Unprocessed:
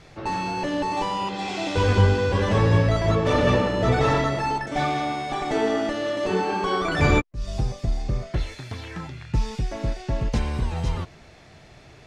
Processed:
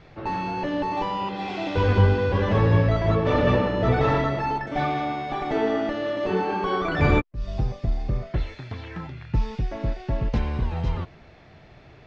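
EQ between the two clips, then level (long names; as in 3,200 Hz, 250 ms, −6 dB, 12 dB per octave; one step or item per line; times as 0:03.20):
high-frequency loss of the air 200 metres
0.0 dB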